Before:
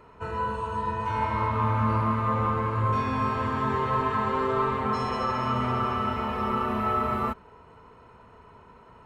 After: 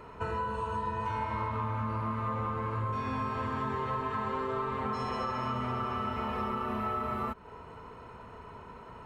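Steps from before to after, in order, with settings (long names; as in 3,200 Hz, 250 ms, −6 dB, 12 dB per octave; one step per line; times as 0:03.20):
downward compressor 6 to 1, threshold −35 dBFS, peak gain reduction 14 dB
level +4 dB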